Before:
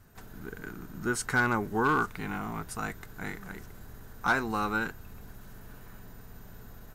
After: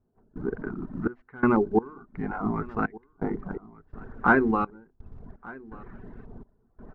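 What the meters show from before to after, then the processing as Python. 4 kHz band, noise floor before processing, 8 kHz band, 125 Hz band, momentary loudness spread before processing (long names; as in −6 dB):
below −15 dB, −49 dBFS, below −30 dB, +2.0 dB, 23 LU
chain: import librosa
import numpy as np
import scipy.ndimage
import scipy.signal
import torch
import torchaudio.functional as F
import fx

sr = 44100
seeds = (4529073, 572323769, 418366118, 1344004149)

p1 = fx.tracing_dist(x, sr, depth_ms=0.033)
p2 = fx.hum_notches(p1, sr, base_hz=50, count=7)
p3 = fx.dereverb_blind(p2, sr, rt60_s=1.1)
p4 = fx.high_shelf(p3, sr, hz=5400.0, db=-11.0)
p5 = fx.rider(p4, sr, range_db=5, speed_s=2.0)
p6 = p4 + (p5 * 10.0 ** (0.0 / 20.0))
p7 = fx.filter_lfo_lowpass(p6, sr, shape='saw_up', hz=0.64, low_hz=780.0, high_hz=2400.0, q=1.2)
p8 = fx.quant_float(p7, sr, bits=4)
p9 = fx.small_body(p8, sr, hz=(250.0, 370.0), ring_ms=30, db=8)
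p10 = fx.step_gate(p9, sr, bpm=84, pattern='..xxxx..xx', floor_db=-24.0, edge_ms=4.5)
p11 = fx.spacing_loss(p10, sr, db_at_10k=23)
y = p11 + fx.echo_single(p11, sr, ms=1187, db=-22.0, dry=0)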